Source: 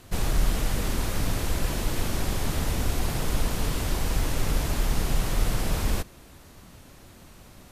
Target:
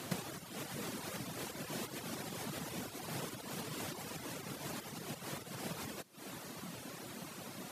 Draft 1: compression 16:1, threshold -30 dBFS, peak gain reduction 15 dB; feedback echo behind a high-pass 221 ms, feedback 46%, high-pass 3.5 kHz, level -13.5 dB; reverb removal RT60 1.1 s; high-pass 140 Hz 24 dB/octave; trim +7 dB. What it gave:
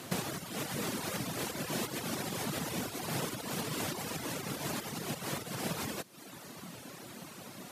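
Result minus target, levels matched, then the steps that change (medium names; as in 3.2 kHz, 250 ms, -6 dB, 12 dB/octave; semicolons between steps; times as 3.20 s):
compression: peak gain reduction -6.5 dB
change: compression 16:1, threshold -37 dBFS, peak gain reduction 21.5 dB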